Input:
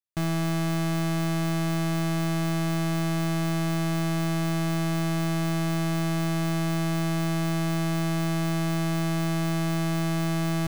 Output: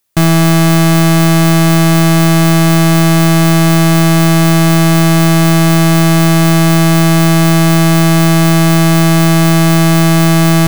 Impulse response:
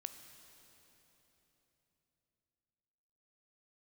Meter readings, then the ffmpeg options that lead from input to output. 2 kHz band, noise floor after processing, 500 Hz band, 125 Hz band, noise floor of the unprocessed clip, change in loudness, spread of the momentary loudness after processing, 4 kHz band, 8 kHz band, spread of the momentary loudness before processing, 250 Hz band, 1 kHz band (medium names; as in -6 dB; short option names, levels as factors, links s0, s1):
+18.5 dB, -8 dBFS, +17.5 dB, +18.0 dB, -26 dBFS, +18.0 dB, 0 LU, +19.0 dB, +20.5 dB, 0 LU, +18.0 dB, +18.0 dB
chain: -af "apsyclip=39.8,crystalizer=i=0.5:c=0,volume=0.422"